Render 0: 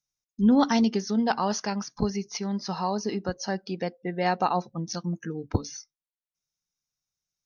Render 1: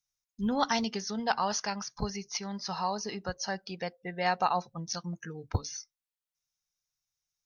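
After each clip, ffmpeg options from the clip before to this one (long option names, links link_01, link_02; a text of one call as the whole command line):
ffmpeg -i in.wav -af "equalizer=frequency=280:width=0.89:gain=-13" out.wav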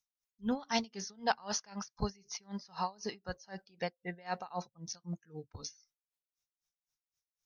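ffmpeg -i in.wav -af "aeval=exprs='val(0)*pow(10,-26*(0.5-0.5*cos(2*PI*3.9*n/s))/20)':channel_layout=same" out.wav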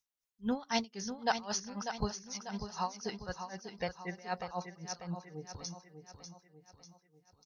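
ffmpeg -i in.wav -af "aecho=1:1:594|1188|1782|2376|2970:0.376|0.18|0.0866|0.0416|0.02" out.wav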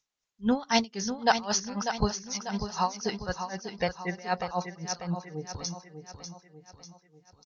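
ffmpeg -i in.wav -af "aresample=16000,aresample=44100,volume=8dB" out.wav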